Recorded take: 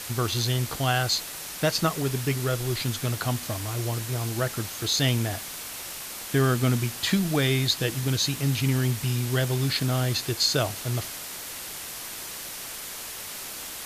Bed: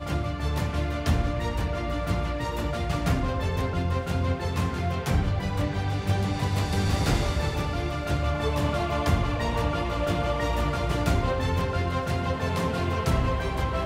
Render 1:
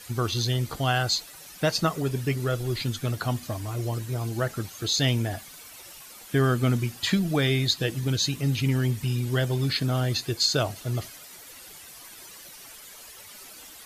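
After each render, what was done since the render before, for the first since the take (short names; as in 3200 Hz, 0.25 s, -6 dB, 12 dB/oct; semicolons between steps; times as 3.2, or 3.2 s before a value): denoiser 12 dB, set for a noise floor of -37 dBFS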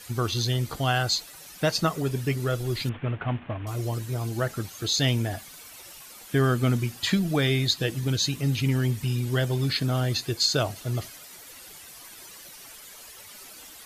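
2.89–3.67 CVSD 16 kbps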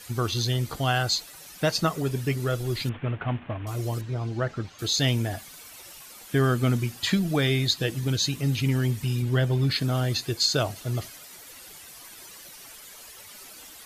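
4.01–4.79 air absorption 150 m; 9.22–9.71 tone controls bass +3 dB, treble -7 dB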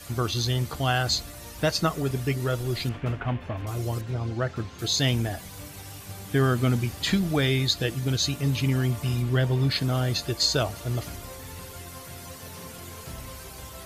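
add bed -16 dB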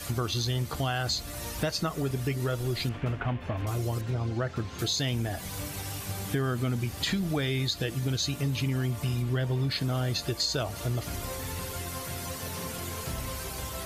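in parallel at -2 dB: limiter -17.5 dBFS, peak gain reduction 7 dB; on the sum: compressor 3:1, threshold -29 dBFS, peak gain reduction 11 dB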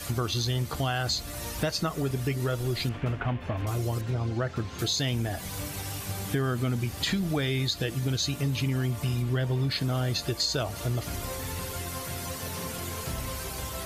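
gain +1 dB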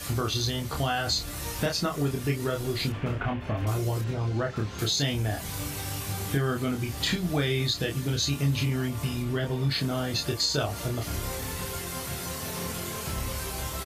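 doubler 28 ms -3.5 dB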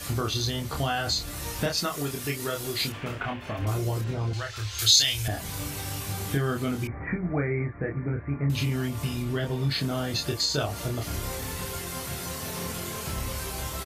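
1.77–3.59 tilt +2 dB/oct; 4.33–5.28 EQ curve 110 Hz 0 dB, 170 Hz -29 dB, 290 Hz -15 dB, 1300 Hz -2 dB, 3100 Hz +8 dB, 4600 Hz +10 dB; 6.87–8.5 Chebyshev low-pass 2300 Hz, order 8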